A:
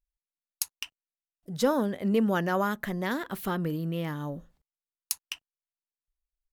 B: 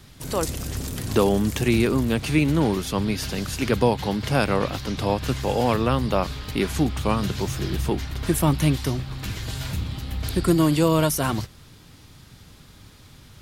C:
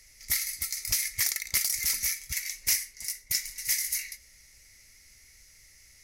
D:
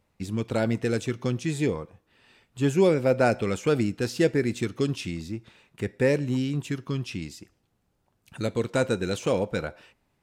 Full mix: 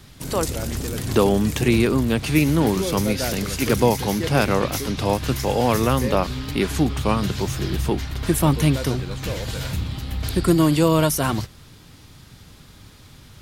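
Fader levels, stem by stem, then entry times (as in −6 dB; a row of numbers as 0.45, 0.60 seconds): muted, +2.0 dB, −6.0 dB, −7.0 dB; muted, 0.00 s, 2.05 s, 0.00 s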